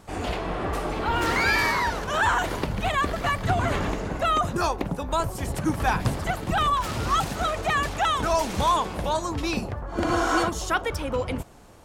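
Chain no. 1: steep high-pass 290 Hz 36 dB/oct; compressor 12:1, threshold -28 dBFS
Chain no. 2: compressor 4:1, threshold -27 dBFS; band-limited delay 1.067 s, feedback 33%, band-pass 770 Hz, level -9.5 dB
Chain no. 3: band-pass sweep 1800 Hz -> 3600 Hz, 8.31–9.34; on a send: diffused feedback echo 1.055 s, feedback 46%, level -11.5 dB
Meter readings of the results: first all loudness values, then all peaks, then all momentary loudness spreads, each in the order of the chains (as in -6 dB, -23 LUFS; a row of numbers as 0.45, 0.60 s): -32.5, -30.5, -32.0 LUFS; -17.0, -16.0, -14.5 dBFS; 4, 3, 13 LU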